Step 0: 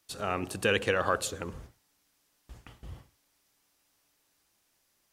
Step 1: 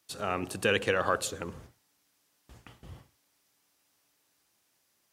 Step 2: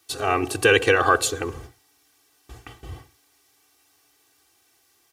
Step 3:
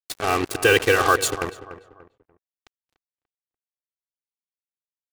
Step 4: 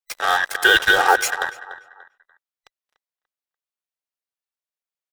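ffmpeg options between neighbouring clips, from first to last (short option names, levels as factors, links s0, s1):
-af "highpass=82"
-af "aecho=1:1:2.6:0.89,volume=2.37"
-filter_complex "[0:a]acrusher=bits=3:mix=0:aa=0.5,asplit=2[s0][s1];[s1]adelay=292,lowpass=f=1800:p=1,volume=0.211,asplit=2[s2][s3];[s3]adelay=292,lowpass=f=1800:p=1,volume=0.36,asplit=2[s4][s5];[s5]adelay=292,lowpass=f=1800:p=1,volume=0.36[s6];[s0][s2][s4][s6]amix=inputs=4:normalize=0"
-af "afftfilt=real='real(if(between(b,1,1012),(2*floor((b-1)/92)+1)*92-b,b),0)':imag='imag(if(between(b,1,1012),(2*floor((b-1)/92)+1)*92-b,b),0)*if(between(b,1,1012),-1,1)':win_size=2048:overlap=0.75,firequalizer=gain_entry='entry(200,0);entry(560,12);entry(7400,8)':delay=0.05:min_phase=1,volume=0.376"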